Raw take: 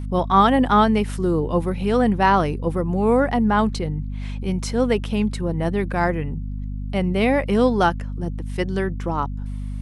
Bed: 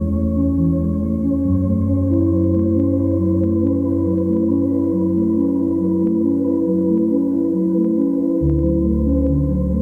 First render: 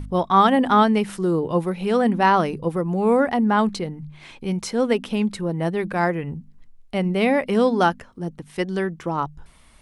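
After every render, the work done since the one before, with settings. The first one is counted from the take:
hum removal 50 Hz, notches 5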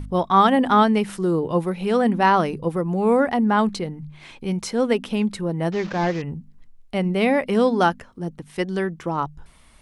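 0:05.72–0:06.22: linear delta modulator 32 kbit/s, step −32 dBFS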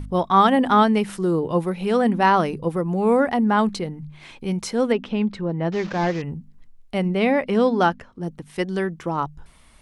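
0:04.92–0:05.72: high-frequency loss of the air 160 metres
0:07.08–0:08.23: high-frequency loss of the air 60 metres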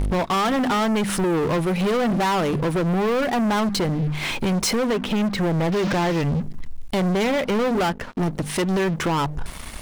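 downward compressor 4 to 1, threshold −29 dBFS, peak gain reduction 15.5 dB
leveller curve on the samples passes 5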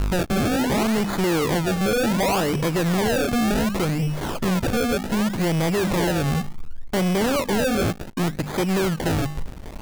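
sample-and-hold swept by an LFO 31×, swing 100% 0.67 Hz
slack as between gear wheels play −41 dBFS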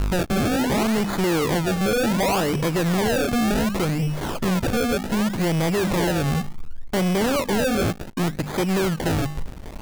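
no processing that can be heard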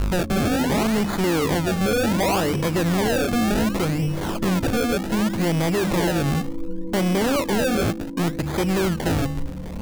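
mix in bed −15.5 dB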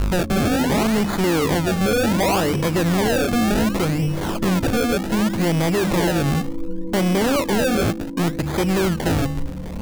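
level +2 dB

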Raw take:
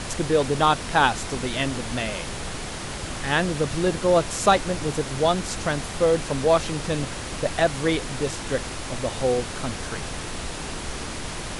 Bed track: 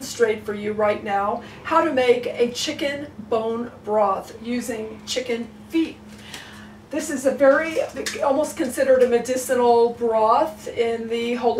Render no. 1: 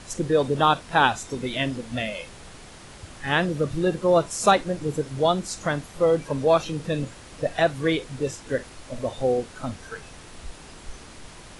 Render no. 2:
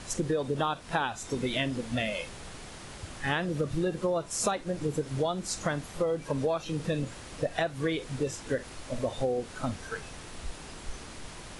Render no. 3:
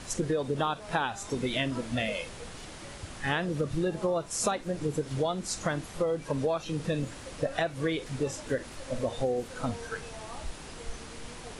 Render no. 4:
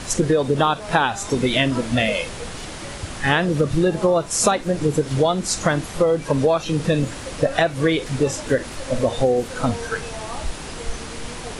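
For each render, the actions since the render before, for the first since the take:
noise reduction from a noise print 12 dB
downward compressor 16 to 1, threshold −25 dBFS, peak gain reduction 14 dB
mix in bed track −28 dB
level +11 dB

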